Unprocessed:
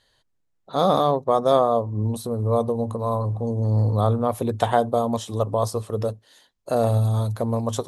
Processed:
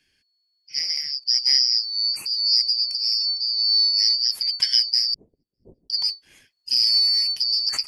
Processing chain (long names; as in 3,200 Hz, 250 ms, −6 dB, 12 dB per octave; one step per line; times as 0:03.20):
band-splitting scrambler in four parts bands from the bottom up 4321
0:05.14–0:05.90: inverse Chebyshev low-pass filter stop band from 1,400 Hz, stop band 60 dB
speech leveller 2 s
0:00.79–0:01.22: harmonic and percussive parts rebalanced harmonic −10 dB
0:02.01–0:02.59: high-pass filter 67 Hz → 180 Hz 12 dB per octave